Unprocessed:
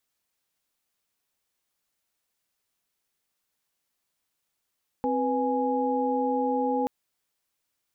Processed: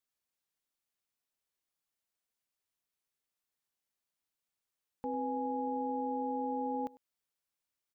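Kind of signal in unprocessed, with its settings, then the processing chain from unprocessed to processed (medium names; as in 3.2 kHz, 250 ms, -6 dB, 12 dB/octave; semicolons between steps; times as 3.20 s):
chord C4/B4/G#5 sine, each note -27.5 dBFS 1.83 s
peak limiter -28.5 dBFS; delay 100 ms -14.5 dB; upward expansion 1.5:1, over -55 dBFS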